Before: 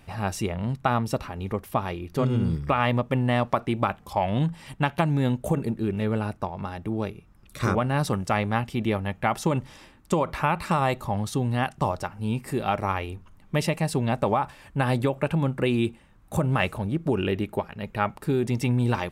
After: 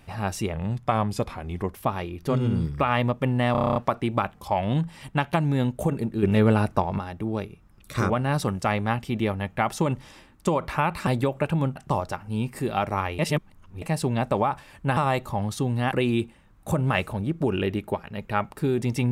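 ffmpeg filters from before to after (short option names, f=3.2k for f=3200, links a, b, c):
-filter_complex "[0:a]asplit=19[a][b][c][d][e][f][g][h][i][j][k][l][m][n][o][p][q][r][s];[a]atrim=end=0.534[t];[b]atrim=start=0.53:end=1.62,asetpts=PTS-STARTPTS,asetrate=40131,aresample=44100,atrim=end_sample=52823,asetpts=PTS-STARTPTS[u];[c]atrim=start=1.616:end=3.442[v];[d]atrim=start=3.408:end=3.442[w];[e]atrim=start=3.408:end=3.442[x];[f]atrim=start=3.408:end=3.442[y];[g]atrim=start=3.408:end=3.442[z];[h]atrim=start=3.408:end=3.442[aa];[i]atrim=start=3.408:end=3.442[ab];[j]atrim=start=3.408:end=3.442[ac];[k]atrim=start=3.408:end=5.882[ad];[l]atrim=start=5.878:end=6.642,asetpts=PTS-STARTPTS,volume=7dB[ae];[m]atrim=start=6.638:end=10.722[af];[n]atrim=start=14.878:end=15.572[ag];[o]atrim=start=11.668:end=13.102[ah];[p]atrim=start=13.098:end=13.732,asetpts=PTS-STARTPTS,areverse[ai];[q]atrim=start=13.728:end=14.882[aj];[r]atrim=start=10.718:end=11.672[ak];[s]atrim=start=15.568[al];[t][u]acrossfade=d=0.004:c1=hsin:c2=hsin[am];[am][v]acrossfade=d=0.004:c1=hsin:c2=hsin[an];[an][w]acrossfade=d=0.004:c1=hsin:c2=hsin[ao];[ao][x]acrossfade=d=0.004:c1=hsin:c2=hsin[ap];[ap][y]acrossfade=d=0.004:c1=hsin:c2=hsin[aq];[aq][z]acrossfade=d=0.004:c1=hsin:c2=hsin[ar];[ar][aa]acrossfade=d=0.004:c1=hsin:c2=hsin[as];[as][ab]acrossfade=d=0.004:c1=hsin:c2=hsin[at];[at][ac]acrossfade=d=0.004:c1=hsin:c2=hsin[au];[au][ad]acrossfade=d=0.004:c1=hsin:c2=hsin[av];[av][ae]acrossfade=d=0.004:c1=hsin:c2=hsin[aw];[aw][af]acrossfade=d=0.004:c1=hsin:c2=hsin[ax];[ax][ag]acrossfade=d=0.004:c1=hsin:c2=hsin[ay];[ay][ah]acrossfade=d=0.004:c1=hsin:c2=hsin[az];[az][ai]acrossfade=d=0.004:c1=hsin:c2=hsin[ba];[ba][aj]acrossfade=d=0.004:c1=hsin:c2=hsin[bb];[bb][ak]acrossfade=d=0.004:c1=hsin:c2=hsin[bc];[bc][al]acrossfade=d=0.004:c1=hsin:c2=hsin"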